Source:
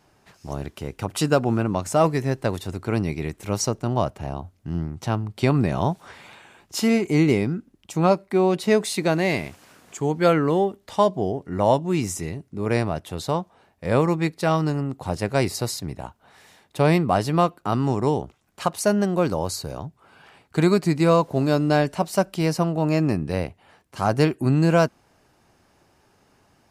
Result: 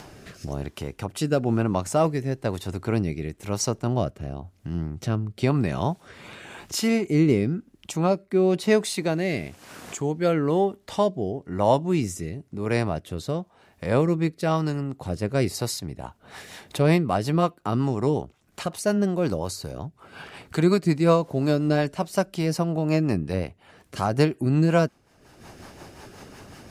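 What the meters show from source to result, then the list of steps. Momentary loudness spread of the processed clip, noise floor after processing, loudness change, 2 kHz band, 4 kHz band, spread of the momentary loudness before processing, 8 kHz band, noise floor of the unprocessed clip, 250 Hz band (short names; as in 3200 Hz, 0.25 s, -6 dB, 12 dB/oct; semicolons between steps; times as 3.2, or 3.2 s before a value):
18 LU, -61 dBFS, -2.0 dB, -3.0 dB, -2.0 dB, 13 LU, -2.0 dB, -62 dBFS, -1.5 dB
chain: upward compressor, threshold -26 dBFS; rotary speaker horn 1 Hz, later 5.5 Hz, at 15.58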